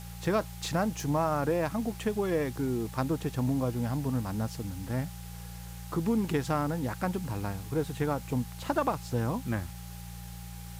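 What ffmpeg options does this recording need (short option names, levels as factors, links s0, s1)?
-af "adeclick=t=4,bandreject=f=58.5:t=h:w=4,bandreject=f=117:t=h:w=4,bandreject=f=175.5:t=h:w=4,bandreject=f=810:w=30,afwtdn=0.0032"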